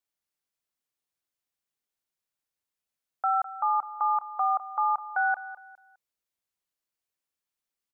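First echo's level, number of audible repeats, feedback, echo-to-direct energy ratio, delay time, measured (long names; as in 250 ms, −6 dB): −15.0 dB, 3, 32%, −14.5 dB, 205 ms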